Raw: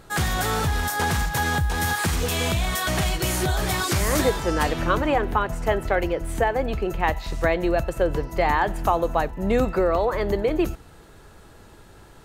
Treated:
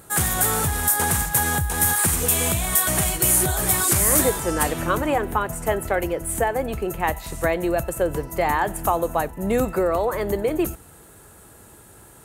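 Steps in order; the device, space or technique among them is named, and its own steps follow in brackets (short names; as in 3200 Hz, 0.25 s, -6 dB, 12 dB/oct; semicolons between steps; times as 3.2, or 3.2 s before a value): budget condenser microphone (HPF 60 Hz 12 dB/oct; resonant high shelf 6800 Hz +12 dB, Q 1.5)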